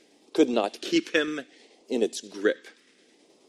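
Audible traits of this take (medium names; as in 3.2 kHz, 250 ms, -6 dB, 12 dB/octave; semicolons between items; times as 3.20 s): phasing stages 2, 0.65 Hz, lowest notch 720–1600 Hz; tremolo saw down 9.4 Hz, depth 35%; MP3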